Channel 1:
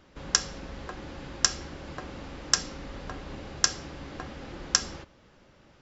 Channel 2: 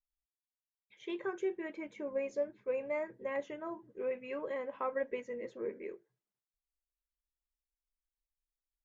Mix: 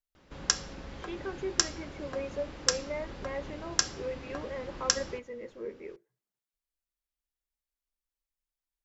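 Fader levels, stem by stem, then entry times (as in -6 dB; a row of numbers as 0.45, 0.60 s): -3.0, -0.5 dB; 0.15, 0.00 s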